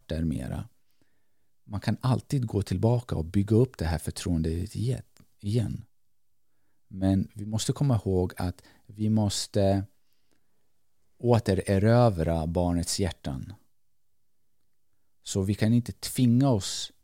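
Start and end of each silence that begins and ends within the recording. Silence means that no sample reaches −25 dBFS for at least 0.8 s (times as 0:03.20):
0:00.59–0:01.75
0:05.75–0:07.02
0:09.80–0:11.24
0:13.36–0:15.30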